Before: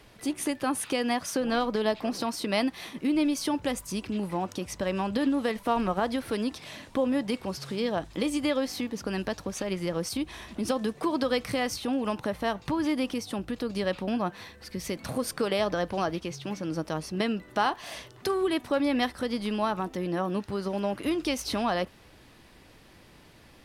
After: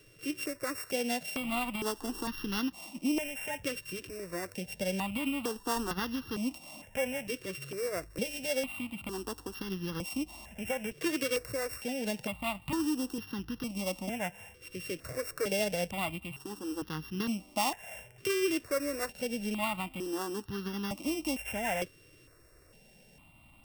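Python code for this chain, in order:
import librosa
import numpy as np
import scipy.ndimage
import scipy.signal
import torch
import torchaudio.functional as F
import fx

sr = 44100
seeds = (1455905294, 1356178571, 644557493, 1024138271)

y = np.r_[np.sort(x[:len(x) // 16 * 16].reshape(-1, 16), axis=1).ravel(), x[len(x) // 16 * 16:]]
y = fx.dmg_noise_colour(y, sr, seeds[0], colour='brown', level_db=-47.0, at=(1.98, 2.58), fade=0.02)
y = fx.phaser_held(y, sr, hz=2.2, low_hz=220.0, high_hz=2300.0)
y = y * librosa.db_to_amplitude(-2.5)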